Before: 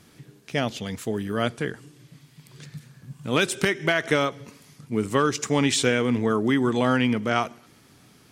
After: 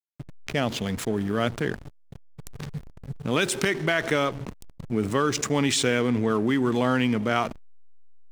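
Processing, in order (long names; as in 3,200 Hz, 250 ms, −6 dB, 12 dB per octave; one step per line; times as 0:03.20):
slack as between gear wheels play −34.5 dBFS
envelope flattener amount 50%
level −3 dB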